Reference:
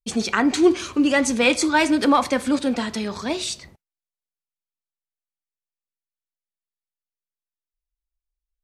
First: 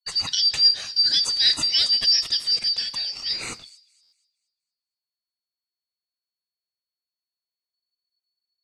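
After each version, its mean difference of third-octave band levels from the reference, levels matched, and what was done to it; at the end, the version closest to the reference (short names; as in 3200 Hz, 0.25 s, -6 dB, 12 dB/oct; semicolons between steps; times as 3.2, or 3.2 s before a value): 11.5 dB: four-band scrambler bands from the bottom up 4321; bell 4000 Hz +6.5 dB 0.56 oct; on a send: thin delay 0.235 s, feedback 36%, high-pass 4800 Hz, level -18.5 dB; on the sum: stuck buffer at 4.02, samples 512, times 8; gain -5.5 dB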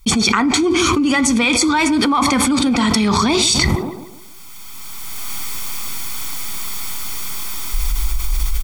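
6.5 dB: recorder AGC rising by 15 dB/s; comb 0.9 ms, depth 66%; band-limited delay 0.144 s, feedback 36%, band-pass 440 Hz, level -15 dB; fast leveller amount 100%; gain -3.5 dB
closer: second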